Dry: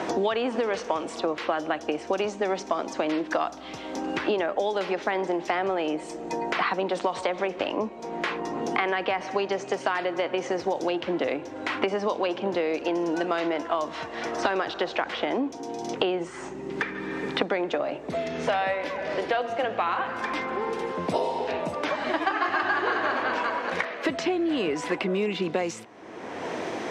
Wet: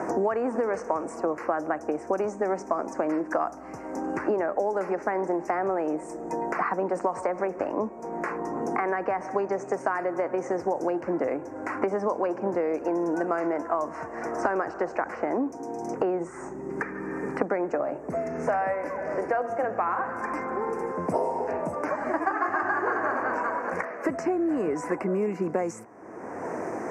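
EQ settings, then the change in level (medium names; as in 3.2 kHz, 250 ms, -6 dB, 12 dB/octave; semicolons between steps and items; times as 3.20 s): Butterworth band-stop 3.5 kHz, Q 0.66; 0.0 dB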